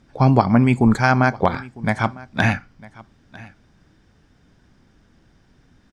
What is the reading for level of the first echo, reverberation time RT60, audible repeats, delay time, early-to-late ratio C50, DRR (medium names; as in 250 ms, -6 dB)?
-21.5 dB, no reverb, 1, 952 ms, no reverb, no reverb